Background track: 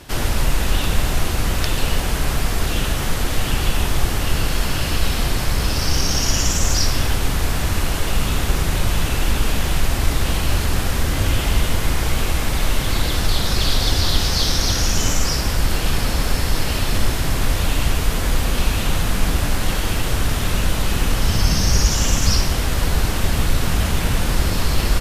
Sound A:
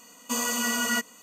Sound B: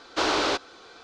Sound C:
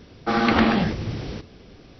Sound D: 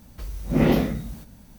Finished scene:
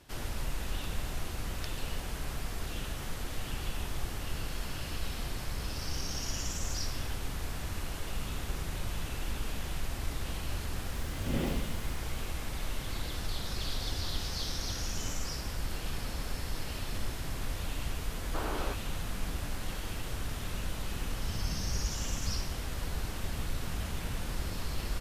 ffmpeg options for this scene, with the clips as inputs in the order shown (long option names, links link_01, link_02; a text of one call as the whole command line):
ffmpeg -i bed.wav -i cue0.wav -i cue1.wav -i cue2.wav -i cue3.wav -filter_complex "[0:a]volume=-17dB[link_01];[2:a]lowpass=1700[link_02];[4:a]atrim=end=1.58,asetpts=PTS-STARTPTS,volume=-15dB,afade=type=in:duration=0.004:curve=hsin,afade=type=out:start_time=1.576:duration=0.004:curve=hsin,adelay=473634S[link_03];[link_02]atrim=end=1.03,asetpts=PTS-STARTPTS,volume=-12dB,afade=type=in:duration=0.004:curve=hsin,afade=type=out:start_time=1.026:duration=0.004:curve=hsin,adelay=18170[link_04];[link_01][link_03][link_04]amix=inputs=3:normalize=0" out.wav